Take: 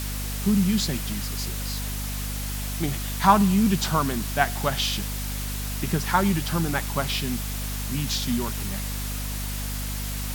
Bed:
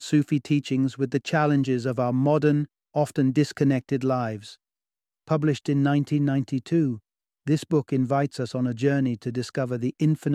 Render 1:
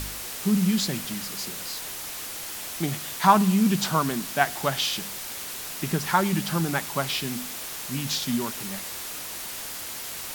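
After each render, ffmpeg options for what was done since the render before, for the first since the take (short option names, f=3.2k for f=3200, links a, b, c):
-af "bandreject=f=50:t=h:w=4,bandreject=f=100:t=h:w=4,bandreject=f=150:t=h:w=4,bandreject=f=200:t=h:w=4,bandreject=f=250:t=h:w=4"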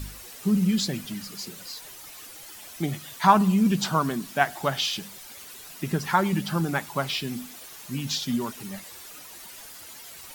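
-af "afftdn=nr=11:nf=-36"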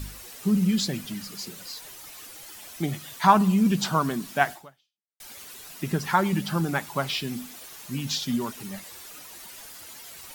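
-filter_complex "[0:a]asplit=2[a][b];[a]atrim=end=5.2,asetpts=PTS-STARTPTS,afade=t=out:st=4.52:d=0.68:c=exp[c];[b]atrim=start=5.2,asetpts=PTS-STARTPTS,afade=t=in:d=0.004:c=hsin[d];[c][d]concat=n=2:v=0:a=1"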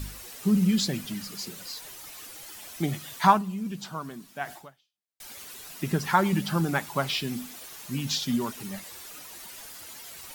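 -filter_complex "[0:a]asplit=3[a][b][c];[a]atrim=end=3.42,asetpts=PTS-STARTPTS,afade=t=out:st=3.27:d=0.15:silence=0.251189[d];[b]atrim=start=3.42:end=4.43,asetpts=PTS-STARTPTS,volume=-12dB[e];[c]atrim=start=4.43,asetpts=PTS-STARTPTS,afade=t=in:d=0.15:silence=0.251189[f];[d][e][f]concat=n=3:v=0:a=1"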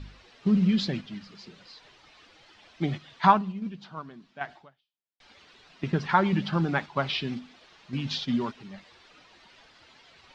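-af "agate=range=-6dB:threshold=-32dB:ratio=16:detection=peak,lowpass=f=4.3k:w=0.5412,lowpass=f=4.3k:w=1.3066"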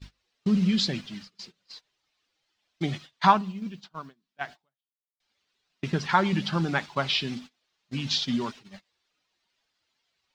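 -af "aemphasis=mode=production:type=75fm,agate=range=-25dB:threshold=-42dB:ratio=16:detection=peak"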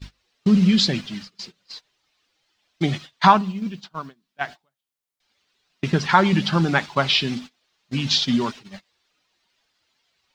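-af "volume=7dB,alimiter=limit=-2dB:level=0:latency=1"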